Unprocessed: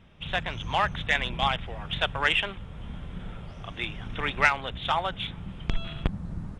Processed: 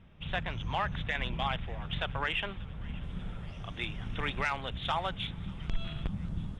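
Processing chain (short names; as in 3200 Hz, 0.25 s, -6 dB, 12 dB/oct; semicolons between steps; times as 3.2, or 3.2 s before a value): tone controls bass +4 dB, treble -7 dB, from 3.02 s treble +2 dB; limiter -16.5 dBFS, peak gain reduction 9 dB; thin delay 0.587 s, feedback 67%, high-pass 1600 Hz, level -20.5 dB; gain -4.5 dB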